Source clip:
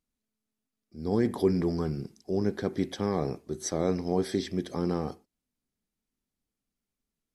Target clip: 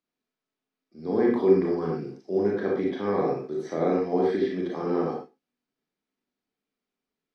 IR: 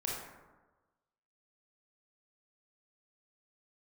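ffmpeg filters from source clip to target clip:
-filter_complex "[0:a]acrossover=split=190 5200:gain=0.0794 1 0.1[a][b][c];[a][b][c]amix=inputs=3:normalize=0,acrossover=split=3000[d][e];[e]acompressor=threshold=-59dB:ratio=4:attack=1:release=60[f];[d][f]amix=inputs=2:normalize=0[g];[1:a]atrim=start_sample=2205,afade=t=out:st=0.19:d=0.01,atrim=end_sample=8820[h];[g][h]afir=irnorm=-1:irlink=0,volume=2.5dB"

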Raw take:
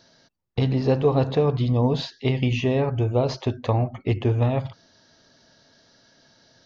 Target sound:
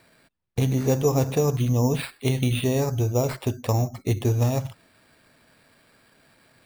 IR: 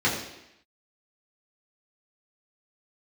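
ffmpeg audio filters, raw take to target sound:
-af "acrusher=samples=7:mix=1:aa=0.000001,equalizer=f=780:t=o:w=2.7:g=-2.5"

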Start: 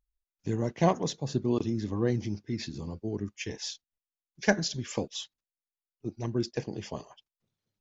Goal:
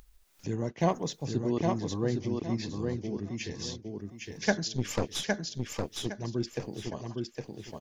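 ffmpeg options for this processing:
-filter_complex "[0:a]asplit=3[a][b][c];[a]afade=t=out:st=4.75:d=0.02[d];[b]aeval=exprs='0.178*(cos(1*acos(clip(val(0)/0.178,-1,1)))-cos(1*PI/2))+0.0282*(cos(5*acos(clip(val(0)/0.178,-1,1)))-cos(5*PI/2))+0.0398*(cos(8*acos(clip(val(0)/0.178,-1,1)))-cos(8*PI/2))':c=same,afade=t=in:st=4.75:d=0.02,afade=t=out:st=6.06:d=0.02[e];[c]afade=t=in:st=6.06:d=0.02[f];[d][e][f]amix=inputs=3:normalize=0,acompressor=mode=upward:threshold=-34dB:ratio=2.5,aecho=1:1:811|1622|2433|3244:0.668|0.174|0.0452|0.0117,volume=-2.5dB"

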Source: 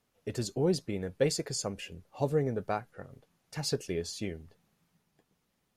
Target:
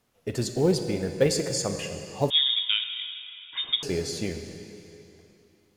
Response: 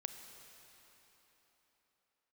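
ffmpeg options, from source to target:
-filter_complex "[0:a]asplit=2[a][b];[b]acrusher=bits=4:mode=log:mix=0:aa=0.000001,volume=-10dB[c];[a][c]amix=inputs=2:normalize=0[d];[1:a]atrim=start_sample=2205,asetrate=57330,aresample=44100[e];[d][e]afir=irnorm=-1:irlink=0,asettb=1/sr,asplit=3[f][g][h];[f]atrim=end=2.304[i];[g]atrim=start=2.3:end=3.83,asetpts=PTS-STARTPTS,afade=t=in:d=0.004:c=qsin,afade=t=out:st=1.526:d=0.004:c=qsin,lowpass=f=3.2k:t=q:w=0.5098,lowpass=f=3.2k:t=q:w=0.6013,lowpass=f=3.2k:t=q:w=0.9,lowpass=f=3.2k:t=q:w=2.563,afreqshift=-3800[j];[h]atrim=start=3.826[k];[i][j]acrossfade=d=0.004:c1=hsin:c2=qsin[l];[l][k]acrossfade=d=0.004:c1=qsin:c2=hsin,volume=8.5dB"

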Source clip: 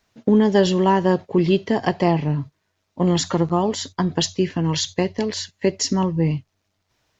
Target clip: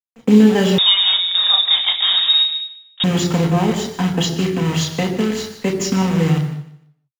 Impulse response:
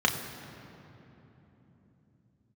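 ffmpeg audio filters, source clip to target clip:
-filter_complex "[0:a]highpass=f=91:w=0.5412,highpass=f=91:w=1.3066,equalizer=f=1.1k:t=o:w=0.39:g=-6.5,acrusher=bits=5:dc=4:mix=0:aa=0.000001,aecho=1:1:151|302|453:0.178|0.0462|0.012[a];[1:a]atrim=start_sample=2205,afade=t=out:st=0.3:d=0.01,atrim=end_sample=13671[b];[a][b]afir=irnorm=-1:irlink=0,asettb=1/sr,asplit=3[c][d][e];[c]atrim=end=0.784[f];[d]atrim=start=0.78:end=3.04,asetpts=PTS-STARTPTS,afade=t=in:d=0.004:c=qsin,afade=t=out:st=2.256:d=0.004:c=qsin,lowpass=f=3.3k:t=q:w=0.5098,lowpass=f=3.3k:t=q:w=0.6013,lowpass=f=3.3k:t=q:w=0.9,lowpass=f=3.3k:t=q:w=2.563,afreqshift=-3900[g];[e]atrim=start=3.036[h];[f][g]acrossfade=d=0.004:c1=hsin:c2=qsin[i];[i][h]acrossfade=d=0.004:c1=qsin:c2=hsin,volume=-10dB"

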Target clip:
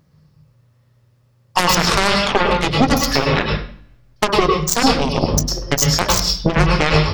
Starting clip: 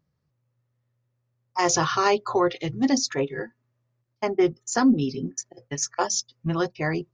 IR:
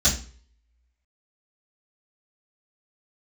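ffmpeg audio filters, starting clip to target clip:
-filter_complex "[0:a]acompressor=threshold=-29dB:ratio=12,aeval=exprs='0.141*(cos(1*acos(clip(val(0)/0.141,-1,1)))-cos(1*PI/2))+0.0251*(cos(3*acos(clip(val(0)/0.141,-1,1)))-cos(3*PI/2))+0.0631*(cos(5*acos(clip(val(0)/0.141,-1,1)))-cos(5*PI/2))+0.00794*(cos(6*acos(clip(val(0)/0.141,-1,1)))-cos(6*PI/2))+0.0708*(cos(7*acos(clip(val(0)/0.141,-1,1)))-cos(7*PI/2))':c=same,asplit=2[a][b];[1:a]atrim=start_sample=2205,asetrate=33075,aresample=44100,adelay=97[c];[b][c]afir=irnorm=-1:irlink=0,volume=-20.5dB[d];[a][d]amix=inputs=2:normalize=0,alimiter=level_in=20dB:limit=-1dB:release=50:level=0:latency=1,volume=-1dB"

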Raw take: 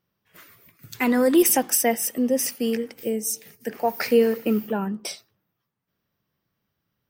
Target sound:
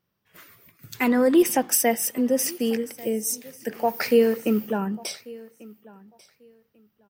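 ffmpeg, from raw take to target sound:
-filter_complex "[0:a]asettb=1/sr,asplit=3[a][b][c];[a]atrim=end=1.084[d];[b]atrim=start=1.08:end=1.7,asetpts=PTS-STARTPTS,afade=t=in:d=0.004:c=qsin,afade=t=out:st=0.616:d=0.004:c=qsin,highshelf=f=4.7k:g=-9.5[e];[c]atrim=start=1.696[f];[d][e]acrossfade=d=0.004:c1=hsin:c2=qsin[g];[g][f]acrossfade=d=0.004:c1=qsin:c2=hsin,aecho=1:1:1142|2284:0.0794|0.0151"

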